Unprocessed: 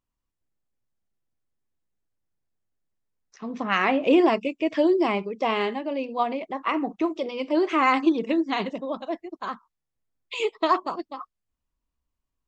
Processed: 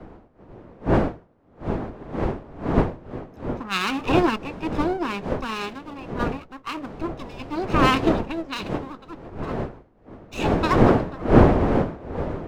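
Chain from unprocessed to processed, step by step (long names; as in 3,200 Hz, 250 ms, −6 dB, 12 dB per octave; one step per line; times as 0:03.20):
lower of the sound and its delayed copy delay 0.76 ms
wind on the microphone 480 Hz −24 dBFS
multiband upward and downward expander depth 70%
level −2.5 dB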